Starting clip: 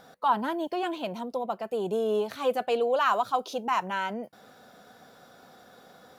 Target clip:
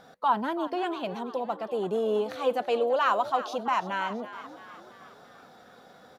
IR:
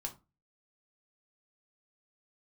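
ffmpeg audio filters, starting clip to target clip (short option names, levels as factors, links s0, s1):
-filter_complex "[0:a]highshelf=f=8700:g=-10,asplit=7[s0][s1][s2][s3][s4][s5][s6];[s1]adelay=334,afreqshift=65,volume=0.2[s7];[s2]adelay=668,afreqshift=130,volume=0.11[s8];[s3]adelay=1002,afreqshift=195,volume=0.0603[s9];[s4]adelay=1336,afreqshift=260,volume=0.0331[s10];[s5]adelay=1670,afreqshift=325,volume=0.0182[s11];[s6]adelay=2004,afreqshift=390,volume=0.01[s12];[s0][s7][s8][s9][s10][s11][s12]amix=inputs=7:normalize=0"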